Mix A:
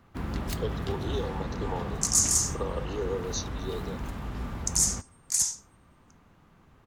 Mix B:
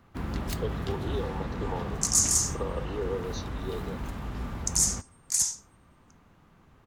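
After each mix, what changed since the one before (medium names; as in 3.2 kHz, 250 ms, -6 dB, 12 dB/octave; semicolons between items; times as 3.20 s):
speech: add distance through air 180 m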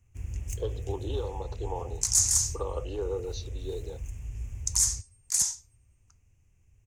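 first sound: add FFT filter 110 Hz 0 dB, 160 Hz -18 dB, 260 Hz -21 dB, 400 Hz -17 dB, 670 Hz -22 dB, 1.3 kHz -29 dB, 2.6 kHz -6 dB, 4 kHz -28 dB, 6.5 kHz +5 dB, 12 kHz -7 dB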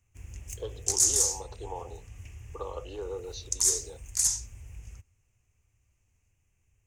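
second sound: entry -1.15 s; master: add bass shelf 450 Hz -8.5 dB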